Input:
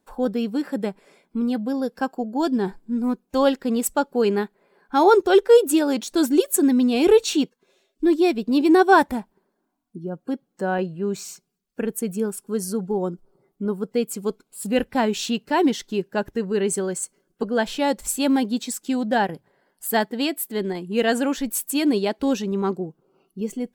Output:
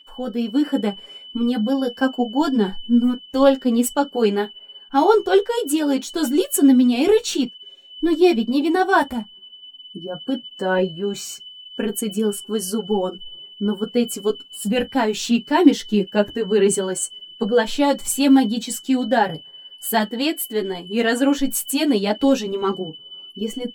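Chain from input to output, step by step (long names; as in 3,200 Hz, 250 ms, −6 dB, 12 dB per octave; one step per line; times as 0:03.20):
steady tone 3,000 Hz −41 dBFS
automatic gain control gain up to 7 dB
multi-voice chorus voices 6, 0.25 Hz, delay 11 ms, depth 3.8 ms
on a send: convolution reverb, pre-delay 3 ms, DRR 14 dB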